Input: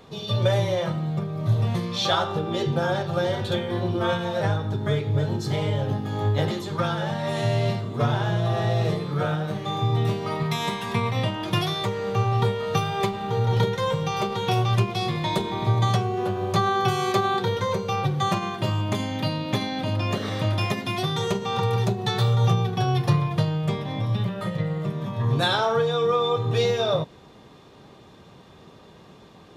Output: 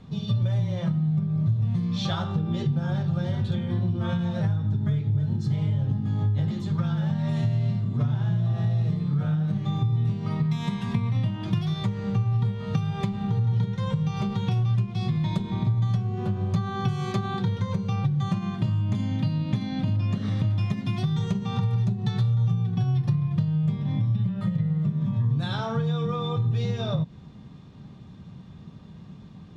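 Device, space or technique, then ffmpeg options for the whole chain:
jukebox: -af "lowpass=7.8k,lowshelf=f=280:t=q:w=1.5:g=13,acompressor=threshold=-16dB:ratio=4,volume=-6.5dB"

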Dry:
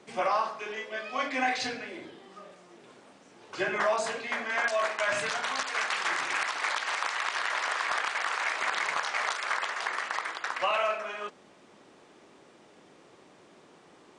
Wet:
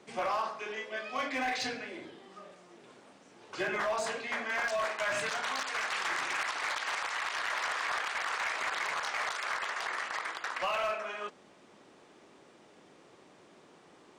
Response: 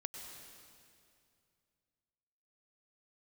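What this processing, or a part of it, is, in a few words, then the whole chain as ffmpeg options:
limiter into clipper: -af "alimiter=limit=-20.5dB:level=0:latency=1:release=20,asoftclip=type=hard:threshold=-24.5dB,volume=-2dB"

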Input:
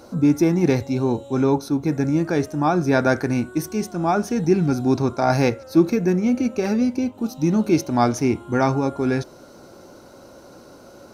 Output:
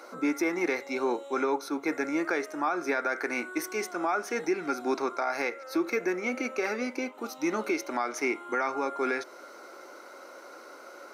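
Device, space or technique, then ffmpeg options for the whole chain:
laptop speaker: -af "highpass=f=340:w=0.5412,highpass=f=340:w=1.3066,equalizer=f=1.3k:t=o:w=0.59:g=9.5,equalizer=f=2.1k:t=o:w=0.38:g=12,alimiter=limit=-15dB:level=0:latency=1:release=216,volume=-3.5dB"

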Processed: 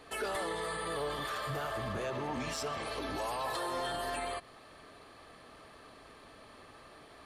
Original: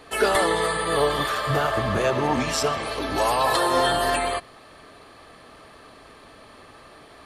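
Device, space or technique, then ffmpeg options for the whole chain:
soft clipper into limiter: -filter_complex "[0:a]asoftclip=type=tanh:threshold=-14dB,alimiter=limit=-22.5dB:level=0:latency=1:release=104,asettb=1/sr,asplit=3[a][b][c];[a]atrim=end=1.424[d];[b]atrim=start=1.42:end=1.93,asetpts=PTS-STARTPTS,afade=t=in:d=0.004:c=qsin,afade=t=out:st=0.506:d=0.004:c=qsin,highshelf=f=9.9k:g=7.5[e];[c]atrim=start=1.926[f];[d][e]acrossfade=d=0.004:c1=hsin:c2=qsin[g];[g][f]acrossfade=d=0.004:c1=qsin:c2=hsin,volume=-7dB"

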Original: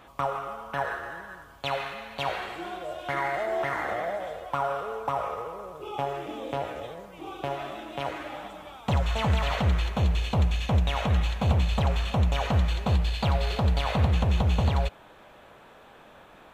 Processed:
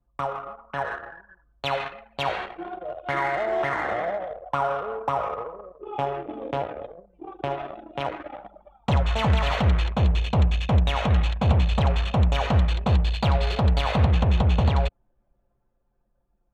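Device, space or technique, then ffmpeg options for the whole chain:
voice memo with heavy noise removal: -af "anlmdn=6.31,dynaudnorm=f=200:g=11:m=3.5dB"

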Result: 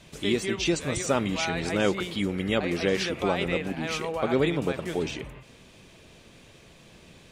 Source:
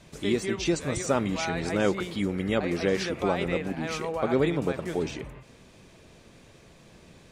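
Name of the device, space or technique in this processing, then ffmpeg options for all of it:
presence and air boost: -af "equalizer=f=3k:t=o:w=0.86:g=5.5,highshelf=f=9.4k:g=4.5"

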